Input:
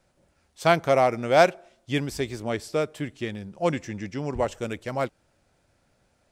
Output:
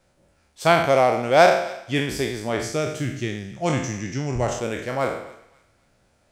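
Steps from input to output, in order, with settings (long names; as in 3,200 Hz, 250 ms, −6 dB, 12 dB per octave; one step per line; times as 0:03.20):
peak hold with a decay on every bin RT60 0.70 s
0:02.62–0:04.59: thirty-one-band graphic EQ 125 Hz +10 dB, 500 Hz −6 dB, 1,000 Hz −7 dB, 6,300 Hz +10 dB
feedback echo with a high-pass in the loop 267 ms, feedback 35%, high-pass 1,200 Hz, level −18.5 dB
level +1.5 dB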